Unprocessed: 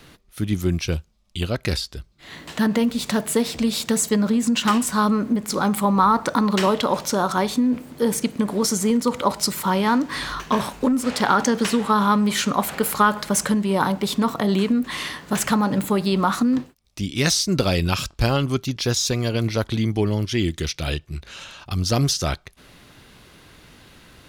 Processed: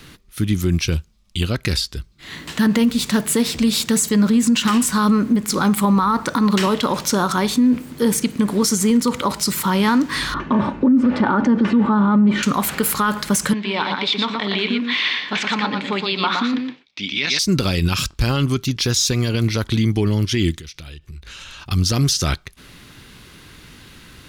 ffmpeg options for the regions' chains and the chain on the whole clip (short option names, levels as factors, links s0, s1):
-filter_complex "[0:a]asettb=1/sr,asplit=3[s0][s1][s2];[s0]atrim=end=10.344[s3];[s1]atrim=start=10.34:end=12.43,asetpts=PTS-STARTPTS,afade=t=in:d=0.004:c=qsin,afade=t=out:st=2.086:d=0.004:c=qsin,highpass=100,lowpass=2900,tiltshelf=f=1400:g=9,aecho=1:1:3.4:0.45,atrim=end_sample=92169[s4];[s2]atrim=start=12.426[s5];[s3][s4]acrossfade=d=0.004:c1=hsin:c2=qsin[s6];[s6][s5]acrossfade=d=0.004:c1=qsin:c2=hsin,asettb=1/sr,asplit=3[s7][s8][s9];[s7]atrim=end=13.534[s10];[s8]atrim=start=13.53:end=17.39,asetpts=PTS-STARTPTS,afade=t=in:d=0.004:c=qsin,afade=t=out:st=3.856:d=0.004:c=qsin,highpass=350,equalizer=f=360:t=q:w=4:g=-6,equalizer=f=540:t=q:w=4:g=-3,equalizer=f=1200:t=q:w=4:g=-4,equalizer=f=2300:t=q:w=4:g=8,equalizer=f=3500:t=q:w=4:g=6,lowpass=f=4600:w=0.5412,lowpass=f=4600:w=1.3066,aecho=1:1:117:0.596,atrim=end_sample=170226[s11];[s9]atrim=start=17.386[s12];[s10][s11]acrossfade=d=0.004:c1=hsin:c2=qsin[s13];[s13][s12]acrossfade=d=0.004:c1=qsin:c2=hsin,asettb=1/sr,asplit=3[s14][s15][s16];[s14]atrim=end=20.544[s17];[s15]atrim=start=20.54:end=21.62,asetpts=PTS-STARTPTS,afade=t=in:d=0.004:c=qsin,afade=t=out:st=1.076:d=0.004:c=qsin,asubboost=boost=9.5:cutoff=81,acompressor=threshold=0.0126:ratio=10:attack=3.2:release=140:knee=1:detection=peak[s18];[s16]atrim=start=21.616[s19];[s17][s18]acrossfade=d=0.004:c1=hsin:c2=qsin[s20];[s20][s19]acrossfade=d=0.004:c1=qsin:c2=hsin,equalizer=f=650:w=1.3:g=-8,alimiter=level_in=4.73:limit=0.891:release=50:level=0:latency=1,volume=0.422"